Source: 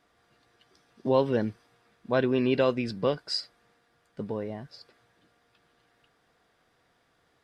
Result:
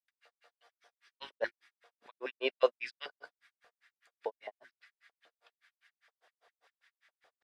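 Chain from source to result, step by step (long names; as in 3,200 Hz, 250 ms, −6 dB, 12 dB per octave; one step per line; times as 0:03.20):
meter weighting curve A
auto-filter high-pass square 4.3 Hz 560–1,900 Hz
mains-hum notches 50/100/150/200/250/300/350 Hz
granular cloud 116 ms, grains 5 per second, pitch spread up and down by 0 semitones
level +1 dB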